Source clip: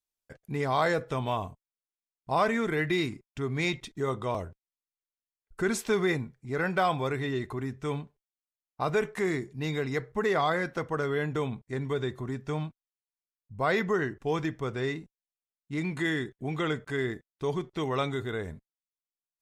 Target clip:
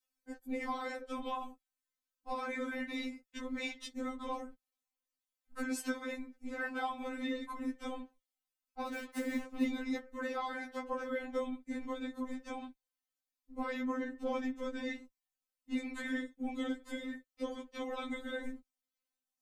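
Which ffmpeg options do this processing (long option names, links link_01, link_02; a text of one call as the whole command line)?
ffmpeg -i in.wav -filter_complex "[0:a]asettb=1/sr,asplit=3[link_01][link_02][link_03];[link_01]atrim=end=16.504[link_04];[link_02]atrim=start=16.5:end=17.05,asetpts=PTS-STARTPTS,afade=type=in:duration=0.004:curve=qsin,afade=type=out:start_time=0.546:duration=0.004:curve=qsin,equalizer=frequency=1400:width=0.6:gain=-12[link_05];[link_03]atrim=start=17.046[link_06];[link_04][link_05]acrossfade=duration=0.004:curve1=hsin:curve2=qsin[link_07];[link_07][link_06]acrossfade=duration=0.004:curve1=qsin:curve2=hsin,acompressor=threshold=-35dB:ratio=12,asplit=3[link_08][link_09][link_10];[link_08]afade=type=out:start_time=8.86:duration=0.02[link_11];[link_09]acrusher=bits=7:mix=0:aa=0.5,afade=type=in:start_time=8.86:duration=0.02,afade=type=out:start_time=9.63:duration=0.02[link_12];[link_10]afade=type=in:start_time=9.63:duration=0.02[link_13];[link_11][link_12][link_13]amix=inputs=3:normalize=0,flanger=delay=0:depth=3.1:regen=70:speed=0.21:shape=sinusoidal,asoftclip=type=tanh:threshold=-30.5dB,afftfilt=real='hypot(re,im)*cos(2*PI*random(0))':imag='hypot(re,im)*sin(2*PI*random(1))':win_size=512:overlap=0.75,afftfilt=real='re*3.46*eq(mod(b,12),0)':imag='im*3.46*eq(mod(b,12),0)':win_size=2048:overlap=0.75,volume=14.5dB" out.wav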